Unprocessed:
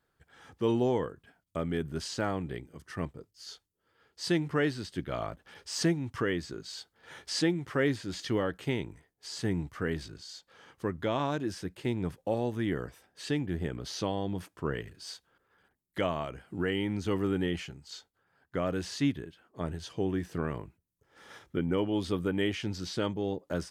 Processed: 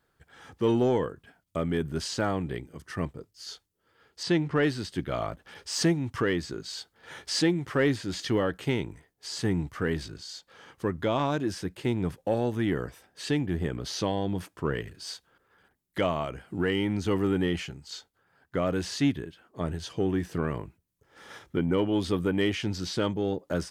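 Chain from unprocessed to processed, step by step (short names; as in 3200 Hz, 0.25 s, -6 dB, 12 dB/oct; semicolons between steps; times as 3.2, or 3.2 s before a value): in parallel at -3.5 dB: soft clip -24 dBFS, distortion -14 dB; 4.23–4.63 on the sum: air absorption 76 m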